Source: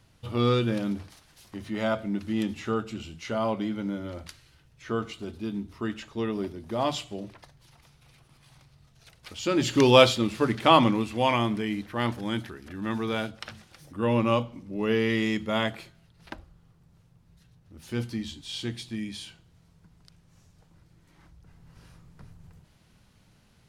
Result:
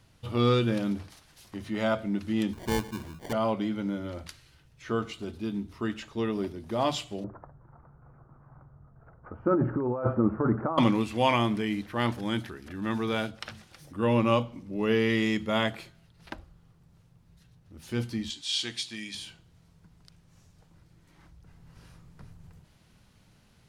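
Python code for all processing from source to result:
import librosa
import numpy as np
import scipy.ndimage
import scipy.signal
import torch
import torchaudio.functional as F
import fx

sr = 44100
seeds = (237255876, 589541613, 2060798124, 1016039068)

y = fx.chain(x, sr, fx.lowpass(hz=3500.0, slope=6),
    fx.sample_hold(seeds[0], rate_hz=1300.0, jitter_pct=0), at=(2.53, 3.33))
y = fx.chain(y, sr, fx.ellip_lowpass(hz=1400.0, order=4, stop_db=60),
    fx.over_compress(threshold_db=-26.0, ratio=-1.0), at=(7.24, 10.78))
y = fx.chain(y, sr, fx.lowpass(hz=6600.0, slope=12),
    fx.tilt_eq(slope=4.0), at=(18.3, 19.15))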